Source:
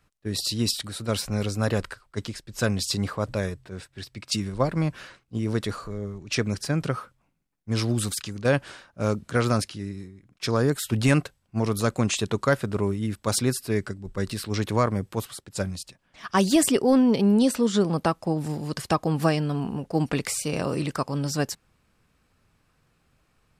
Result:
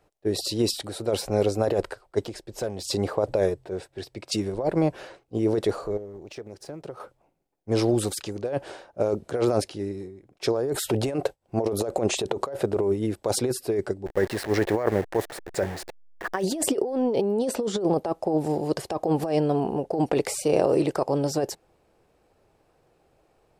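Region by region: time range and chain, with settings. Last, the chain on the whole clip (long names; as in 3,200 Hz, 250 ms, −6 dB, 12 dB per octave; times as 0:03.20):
0:02.22–0:02.85: downward compressor 4 to 1, threshold −31 dBFS + hard clipping −27.5 dBFS
0:05.97–0:07.00: mu-law and A-law mismatch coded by A + downward compressor 12 to 1, threshold −38 dBFS + highs frequency-modulated by the lows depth 0.12 ms
0:10.74–0:12.63: downward expander −46 dBFS + dynamic equaliser 550 Hz, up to +5 dB, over −32 dBFS, Q 1 + upward compression, threshold −20 dBFS
0:14.06–0:16.43: hold until the input has moved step −35.5 dBFS + parametric band 1,800 Hz +14 dB 0.58 octaves
whole clip: flat-topped bell 530 Hz +13.5 dB; compressor whose output falls as the input rises −17 dBFS, ratio −1; level −6 dB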